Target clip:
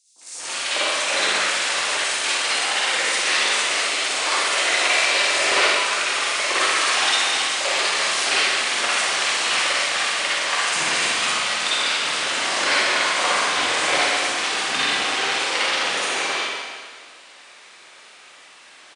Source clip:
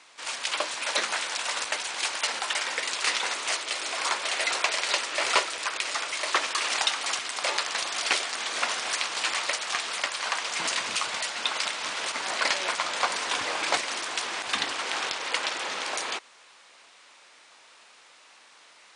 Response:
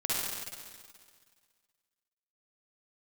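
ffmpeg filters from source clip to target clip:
-filter_complex "[0:a]acrossover=split=950|5600[link_01][link_02][link_03];[link_01]adelay=160[link_04];[link_02]adelay=210[link_05];[link_04][link_05][link_03]amix=inputs=3:normalize=0[link_06];[1:a]atrim=start_sample=2205,asetrate=48510,aresample=44100[link_07];[link_06][link_07]afir=irnorm=-1:irlink=0,volume=2.5dB"

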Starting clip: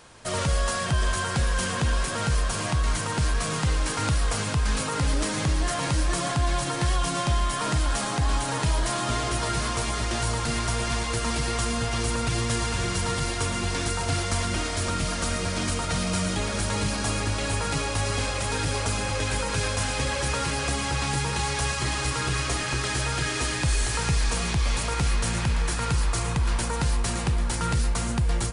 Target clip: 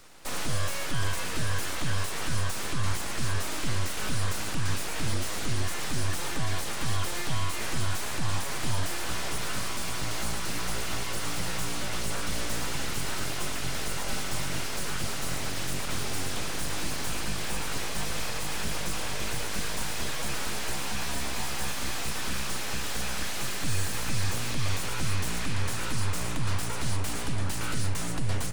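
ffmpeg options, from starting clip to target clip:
ffmpeg -i in.wav -filter_complex "[0:a]aeval=exprs='abs(val(0))':channel_layout=same,acrossover=split=150|1400[link_01][link_02][link_03];[link_02]alimiter=level_in=7dB:limit=-24dB:level=0:latency=1:release=185,volume=-7dB[link_04];[link_03]asoftclip=type=hard:threshold=-33dB[link_05];[link_01][link_04][link_05]amix=inputs=3:normalize=0" out.wav

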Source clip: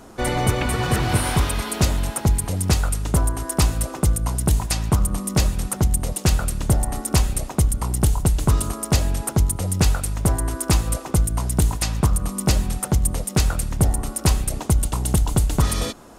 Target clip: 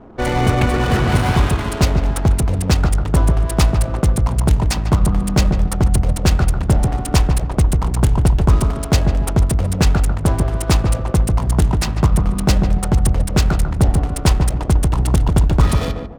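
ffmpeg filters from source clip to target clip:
ffmpeg -i in.wav -filter_complex "[0:a]adynamicsmooth=sensitivity=5:basefreq=630,asplit=2[link_01][link_02];[link_02]adelay=147,lowpass=frequency=990:poles=1,volume=-3.5dB,asplit=2[link_03][link_04];[link_04]adelay=147,lowpass=frequency=990:poles=1,volume=0.32,asplit=2[link_05][link_06];[link_06]adelay=147,lowpass=frequency=990:poles=1,volume=0.32,asplit=2[link_07][link_08];[link_08]adelay=147,lowpass=frequency=990:poles=1,volume=0.32[link_09];[link_01][link_03][link_05][link_07][link_09]amix=inputs=5:normalize=0,volume=4dB" out.wav

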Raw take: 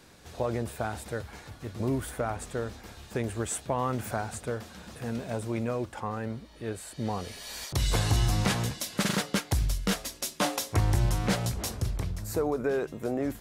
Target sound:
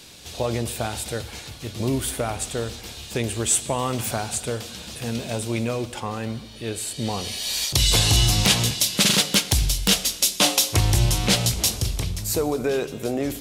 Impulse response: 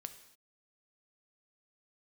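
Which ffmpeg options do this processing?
-filter_complex "[0:a]highshelf=frequency=2200:width_type=q:width=1.5:gain=8.5,aeval=exprs='(mod(2.51*val(0)+1,2)-1)/2.51':channel_layout=same,asplit=2[link_01][link_02];[1:a]atrim=start_sample=2205,asetrate=28224,aresample=44100[link_03];[link_02][link_03]afir=irnorm=-1:irlink=0,volume=0dB[link_04];[link_01][link_04]amix=inputs=2:normalize=0"

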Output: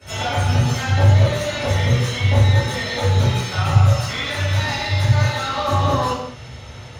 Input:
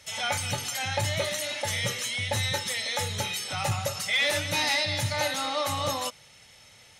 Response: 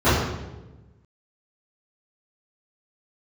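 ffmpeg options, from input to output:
-filter_complex "[0:a]asettb=1/sr,asplit=3[link_01][link_02][link_03];[link_01]atrim=end=3.444[link_04];[link_02]atrim=start=3.44:end=5.65,asetpts=PTS-STARTPTS,afade=type=in:duration=0.004:curve=qsin,afade=type=out:start_time=2.206:duration=0.004:curve=qsin,equalizer=frequency=310:width_type=o:width=1.5:gain=-14.5[link_05];[link_03]atrim=start=5.646[link_06];[link_04][link_05]acrossfade=duration=0.004:curve1=hsin:curve2=qsin[link_07];[link_07][link_06]acrossfade=duration=0.004:curve1=qsin:curve2=hsin,acompressor=threshold=-33dB:ratio=6,aeval=exprs='clip(val(0),-1,0.0133)':channel_layout=same[link_08];[1:a]atrim=start_sample=2205,afade=type=out:start_time=0.3:duration=0.01,atrim=end_sample=13671[link_09];[link_08][link_09]afir=irnorm=-1:irlink=0,volume=-6dB"

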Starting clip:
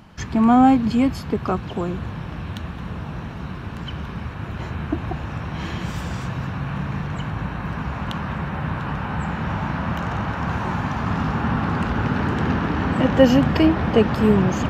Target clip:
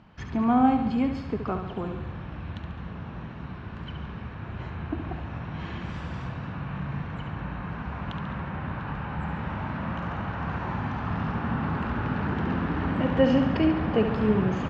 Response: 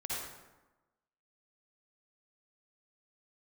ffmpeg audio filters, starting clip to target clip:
-filter_complex "[0:a]lowpass=3500,asplit=2[link_01][link_02];[link_02]aecho=0:1:70|140|210|280|350|420|490:0.398|0.227|0.129|0.0737|0.042|0.024|0.0137[link_03];[link_01][link_03]amix=inputs=2:normalize=0,volume=-7.5dB"

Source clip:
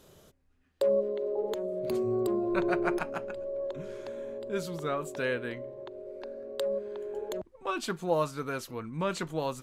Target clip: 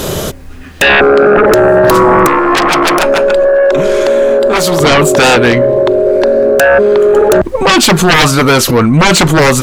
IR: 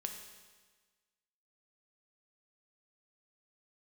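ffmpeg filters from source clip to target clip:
-filter_complex "[0:a]aeval=exprs='0.178*sin(PI/2*6.31*val(0)/0.178)':channel_layout=same,asettb=1/sr,asplit=3[link_01][link_02][link_03];[link_01]atrim=end=2.274[link_04];[link_02]atrim=start=2.27:end=4.81,asetpts=PTS-STARTPTS,afade=type=in:duration=0.004:curve=qsin,afade=type=out:start_time=2.536:duration=0.004:curve=qsin,equalizer=frequency=84:width_type=o:width=2.5:gain=-15[link_05];[link_03]atrim=start=4.806[link_06];[link_04][link_05]acrossfade=duration=0.004:curve1=hsin:curve2=qsin[link_07];[link_07][link_06]acrossfade=duration=0.004:curve1=qsin:curve2=hsin,alimiter=level_in=23dB:limit=-1dB:release=50:level=0:latency=1,volume=-2dB"

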